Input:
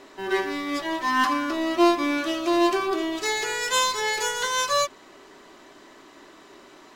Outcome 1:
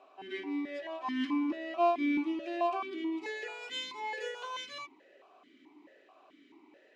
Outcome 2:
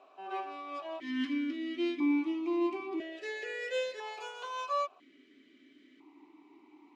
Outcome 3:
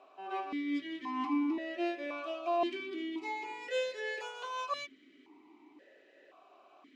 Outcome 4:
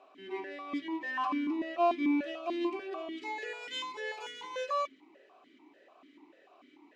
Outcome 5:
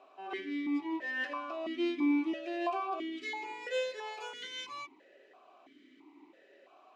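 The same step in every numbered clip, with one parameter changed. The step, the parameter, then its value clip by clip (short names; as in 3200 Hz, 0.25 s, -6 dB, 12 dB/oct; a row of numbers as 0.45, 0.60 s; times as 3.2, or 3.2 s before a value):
vowel sequencer, rate: 4.6, 1, 1.9, 6.8, 3 Hz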